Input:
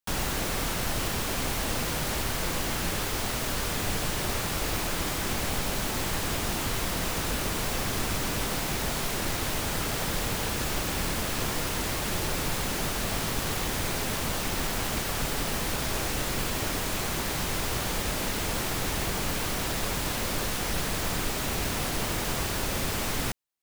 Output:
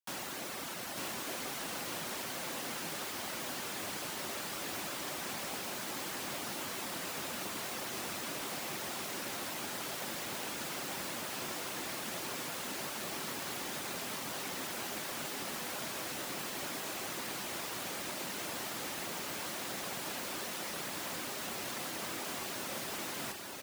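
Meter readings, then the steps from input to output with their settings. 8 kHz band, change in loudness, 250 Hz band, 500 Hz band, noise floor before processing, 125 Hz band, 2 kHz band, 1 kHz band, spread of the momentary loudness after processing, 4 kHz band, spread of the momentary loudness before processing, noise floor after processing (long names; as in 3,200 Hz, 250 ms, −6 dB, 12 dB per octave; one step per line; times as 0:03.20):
−8.5 dB, −9.0 dB, −11.0 dB, −9.5 dB, −31 dBFS, −19.5 dB, −8.5 dB, −8.5 dB, 0 LU, −8.5 dB, 0 LU, −41 dBFS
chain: reverb reduction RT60 0.58 s
high-pass filter 230 Hz 12 dB per octave
notch filter 450 Hz, Q 12
on a send: single-tap delay 897 ms −3 dB
on the sum: level −8.5 dB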